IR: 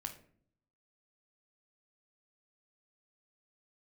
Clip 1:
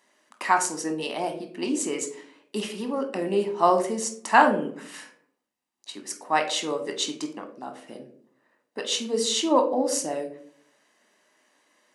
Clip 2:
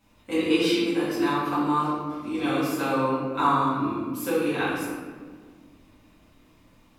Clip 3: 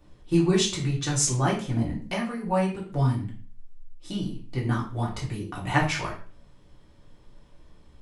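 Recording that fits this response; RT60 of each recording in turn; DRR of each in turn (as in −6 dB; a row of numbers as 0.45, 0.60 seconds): 1; non-exponential decay, 1.7 s, 0.45 s; 5.0, −11.5, −4.5 decibels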